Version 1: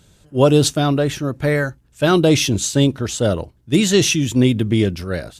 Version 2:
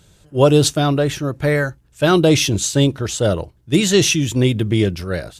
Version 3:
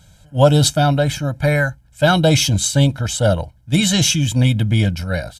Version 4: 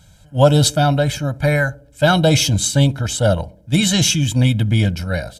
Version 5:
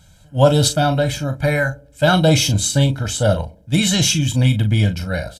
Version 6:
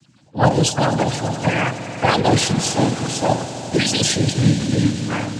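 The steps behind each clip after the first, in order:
bell 240 Hz -8 dB 0.24 oct; gain +1 dB
comb 1.3 ms, depth 95%; gain -1 dB
narrowing echo 67 ms, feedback 65%, band-pass 310 Hz, level -18 dB
doubler 38 ms -9 dB; gain -1 dB
bin magnitudes rounded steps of 30 dB; noise vocoder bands 8; swelling echo 84 ms, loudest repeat 5, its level -18 dB; gain -1 dB

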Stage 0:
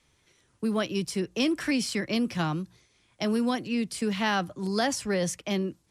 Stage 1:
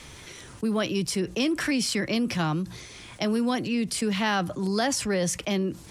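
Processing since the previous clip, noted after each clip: fast leveller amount 50%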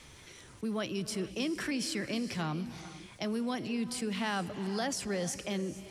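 non-linear reverb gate 0.49 s rising, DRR 12 dB; gain -8.5 dB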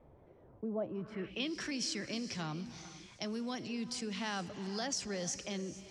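low-pass sweep 650 Hz -> 6100 Hz, 0.8–1.63; gain -5.5 dB

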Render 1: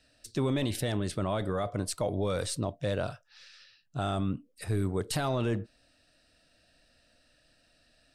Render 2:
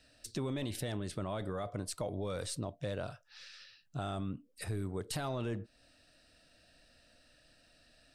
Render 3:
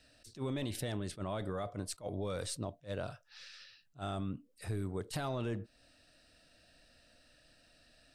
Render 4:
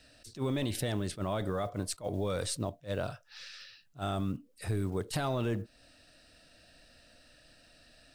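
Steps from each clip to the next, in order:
compressor 2:1, threshold -42 dBFS, peak gain reduction 9.5 dB; gain +1 dB
attack slew limiter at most 300 dB/s
block floating point 7-bit; gain +5 dB

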